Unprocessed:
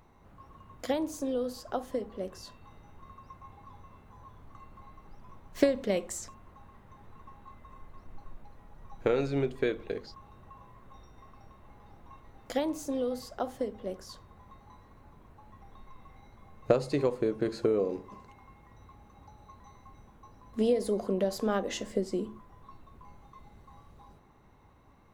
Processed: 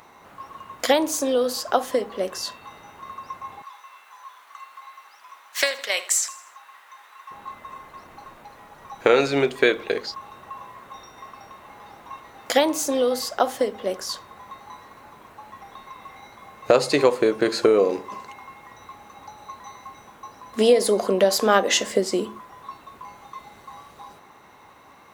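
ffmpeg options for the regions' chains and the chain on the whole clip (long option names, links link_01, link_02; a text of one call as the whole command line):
ffmpeg -i in.wav -filter_complex "[0:a]asettb=1/sr,asplit=3[link_01][link_02][link_03];[link_01]atrim=end=3.624[link_04];[link_02]atrim=start=3.62:end=7.31,asetpts=PTS-STARTPTS,afade=type=in:duration=0.004:curve=qsin,afade=type=out:start_time=3.686:duration=0.004:curve=qsin,highpass=1200,aecho=1:1:80|160|240|320:0.15|0.0673|0.0303|0.0136,atrim=end_sample=162729[link_05];[link_03]atrim=start=7.306[link_06];[link_04][link_05]acrossfade=duration=0.004:curve1=hsin:curve2=qsin[link_07];[link_07][link_06]acrossfade=duration=0.004:curve1=qsin:curve2=hsin,highpass=frequency=1000:poles=1,alimiter=level_in=19dB:limit=-1dB:release=50:level=0:latency=1,volume=-1dB" out.wav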